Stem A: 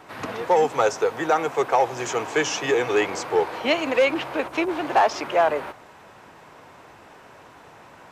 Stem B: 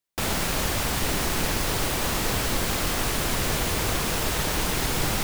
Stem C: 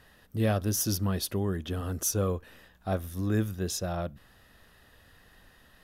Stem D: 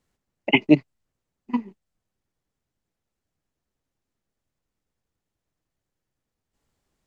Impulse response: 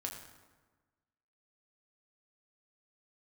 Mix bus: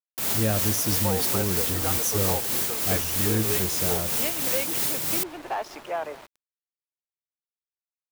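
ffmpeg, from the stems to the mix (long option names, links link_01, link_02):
-filter_complex "[0:a]adelay=550,volume=-10.5dB,asplit=2[link_01][link_02];[link_02]volume=-21.5dB[link_03];[1:a]highpass=130,aemphasis=mode=production:type=50kf,tremolo=f=3.1:d=0.45,volume=-5.5dB[link_04];[2:a]volume=1.5dB[link_05];[link_03]aecho=0:1:209|418|627|836|1045|1254|1463:1|0.49|0.24|0.118|0.0576|0.0282|0.0138[link_06];[link_01][link_04][link_05][link_06]amix=inputs=4:normalize=0,adynamicequalizer=threshold=0.01:dfrequency=990:dqfactor=0.77:tfrequency=990:tqfactor=0.77:attack=5:release=100:ratio=0.375:range=1.5:mode=cutabove:tftype=bell,aeval=exprs='val(0)*gte(abs(val(0)),0.00668)':channel_layout=same"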